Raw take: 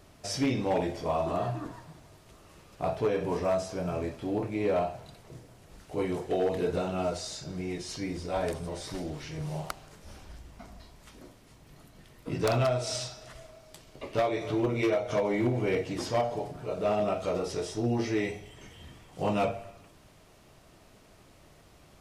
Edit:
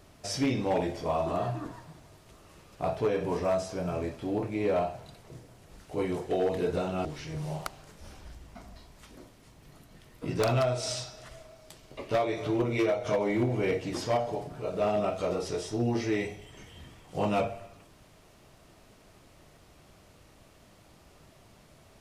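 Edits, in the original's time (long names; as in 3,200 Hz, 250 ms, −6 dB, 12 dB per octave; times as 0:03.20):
0:07.05–0:09.09: remove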